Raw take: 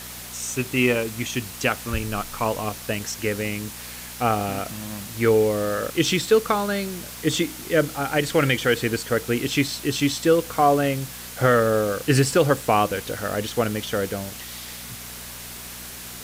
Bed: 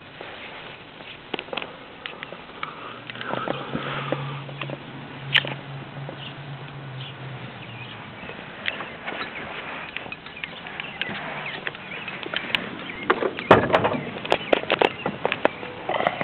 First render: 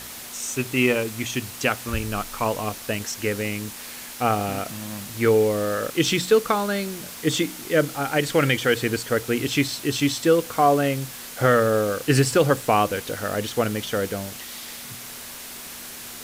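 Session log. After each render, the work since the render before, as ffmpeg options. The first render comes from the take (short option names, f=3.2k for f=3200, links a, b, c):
-af "bandreject=f=60:t=h:w=4,bandreject=f=120:t=h:w=4,bandreject=f=180:t=h:w=4"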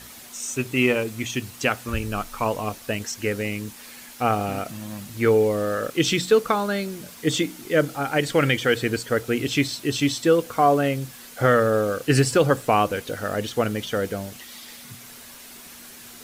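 -af "afftdn=nr=7:nf=-38"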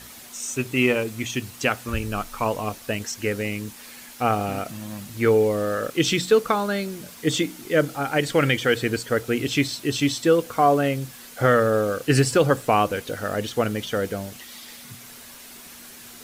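-af anull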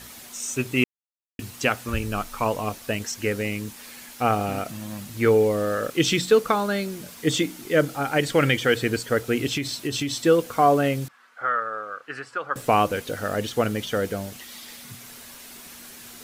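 -filter_complex "[0:a]asettb=1/sr,asplit=3[a][b][c];[a]atrim=end=9.544[d];[b]atrim=start=9.54:end=10.16,asetpts=PTS-STARTPTS,afade=t=in:d=0.004:c=qsin,afade=t=out:st=0.616:d=0.004:c=qsin,acompressor=threshold=-22dB:ratio=10:attack=3.2:release=140:knee=1:detection=peak[e];[c]atrim=start=10.156[f];[d][e]acrossfade=d=0.004:c1=hsin:c2=qsin[g];[g][f]acrossfade=d=0.004:c1=qsin:c2=hsin,asettb=1/sr,asplit=3[h][i][j];[h]atrim=end=11.084[k];[i]atrim=start=11.08:end=12.56,asetpts=PTS-STARTPTS,afade=t=in:d=0.004:c=qsin,afade=t=out:st=1.476:d=0.004:c=qsin,bandpass=f=1.3k:t=q:w=3[l];[j]atrim=start=12.556[m];[k][l]acrossfade=d=0.004:c1=hsin:c2=qsin[n];[n][m]acrossfade=d=0.004:c1=qsin:c2=hsin,asplit=3[o][p][q];[o]atrim=end=0.84,asetpts=PTS-STARTPTS,afade=t=out:st=0.836:d=0.004:c=hsin[r];[p]atrim=start=0.84:end=1.39,asetpts=PTS-STARTPTS,volume=0[s];[q]atrim=start=1.39,asetpts=PTS-STARTPTS,afade=t=in:d=0.004:c=hsin[t];[r][s][t]concat=n=3:v=0:a=1"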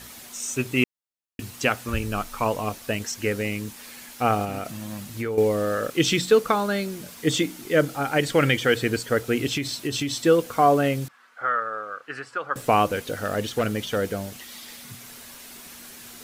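-filter_complex "[0:a]asettb=1/sr,asplit=3[a][b][c];[a]atrim=end=4.444[d];[b]atrim=start=4.44:end=5.38,asetpts=PTS-STARTPTS,afade=t=in:d=0.004:c=qsin,afade=t=out:st=0.936:d=0.004:c=qsin,acompressor=threshold=-25dB:ratio=6:attack=3.2:release=140:knee=1:detection=peak[e];[c]atrim=start=5.376[f];[d][e]acrossfade=d=0.004:c1=hsin:c2=qsin[g];[g][f]acrossfade=d=0.004:c1=qsin:c2=hsin,asettb=1/sr,asplit=3[h][i][j];[h]atrim=end=12.904[k];[i]atrim=start=12.9:end=13.98,asetpts=PTS-STARTPTS,afade=t=in:d=0.004:c=qsin,afade=t=out:st=1.076:d=0.004:c=qsin,asoftclip=type=hard:threshold=-17dB[l];[j]atrim=start=13.976[m];[k][l]acrossfade=d=0.004:c1=hsin:c2=qsin[n];[n][m]acrossfade=d=0.004:c1=qsin:c2=hsin"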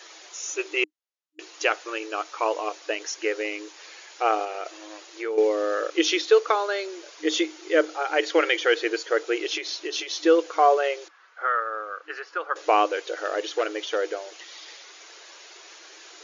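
-af "afftfilt=real='re*between(b*sr/4096,310,7100)':imag='im*between(b*sr/4096,310,7100)':win_size=4096:overlap=0.75"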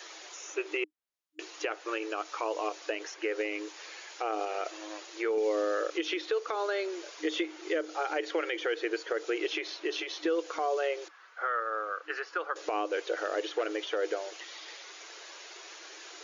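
-filter_complex "[0:a]acrossover=split=430|3000[a][b][c];[a]acompressor=threshold=-31dB:ratio=4[d];[b]acompressor=threshold=-29dB:ratio=4[e];[c]acompressor=threshold=-48dB:ratio=4[f];[d][e][f]amix=inputs=3:normalize=0,alimiter=limit=-20.5dB:level=0:latency=1:release=105"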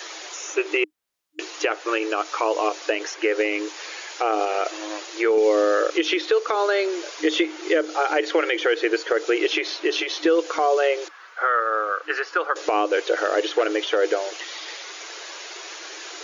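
-af "volume=10.5dB"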